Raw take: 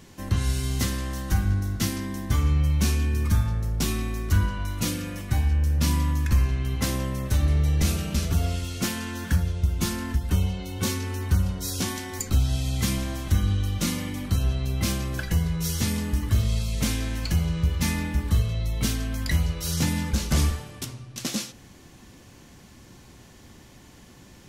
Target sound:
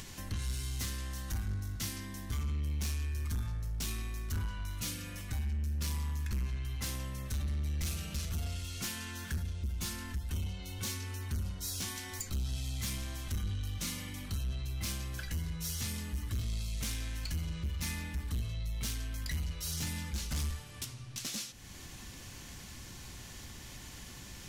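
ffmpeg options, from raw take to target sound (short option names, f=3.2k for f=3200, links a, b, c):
-af "acompressor=mode=upward:threshold=-26dB:ratio=2.5,equalizer=f=360:w=0.32:g=-10.5,asoftclip=type=tanh:threshold=-25dB,volume=-5dB"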